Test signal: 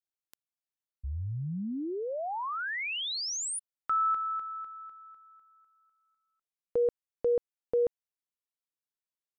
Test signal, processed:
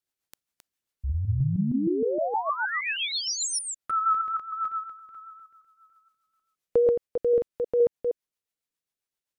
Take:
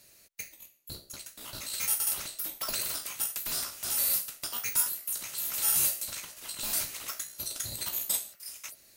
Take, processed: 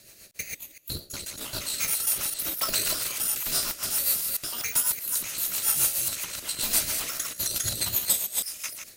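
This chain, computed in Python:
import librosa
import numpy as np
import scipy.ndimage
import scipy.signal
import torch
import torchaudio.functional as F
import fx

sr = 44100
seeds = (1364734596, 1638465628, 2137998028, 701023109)

y = fx.reverse_delay(x, sr, ms=156, wet_db=-3.5)
y = fx.rider(y, sr, range_db=3, speed_s=0.5)
y = fx.rotary(y, sr, hz=7.5)
y = y * 10.0 ** (6.5 / 20.0)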